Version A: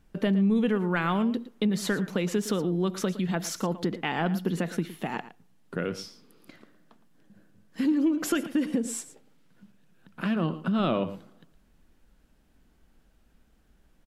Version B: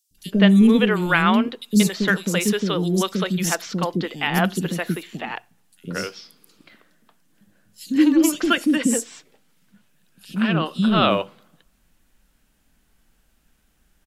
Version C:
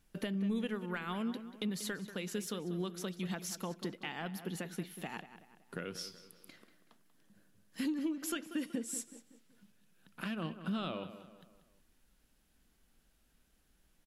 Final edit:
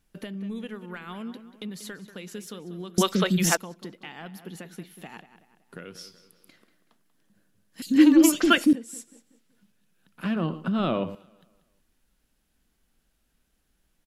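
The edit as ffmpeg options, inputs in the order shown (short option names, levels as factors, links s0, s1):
-filter_complex "[1:a]asplit=2[s0][s1];[2:a]asplit=4[s2][s3][s4][s5];[s2]atrim=end=2.982[s6];[s0]atrim=start=2.978:end=3.572[s7];[s3]atrim=start=3.568:end=7.822[s8];[s1]atrim=start=7.818:end=8.732[s9];[s4]atrim=start=8.728:end=10.242[s10];[0:a]atrim=start=10.238:end=11.152[s11];[s5]atrim=start=11.148[s12];[s6][s7]acrossfade=d=0.004:c1=hsin:c2=hsin[s13];[s13][s8]acrossfade=d=0.004:c1=hsin:c2=hsin[s14];[s14][s9]acrossfade=d=0.004:c1=hsin:c2=hsin[s15];[s15][s10]acrossfade=d=0.004:c1=hsin:c2=hsin[s16];[s16][s11]acrossfade=d=0.004:c1=hsin:c2=hsin[s17];[s17][s12]acrossfade=d=0.004:c1=hsin:c2=hsin"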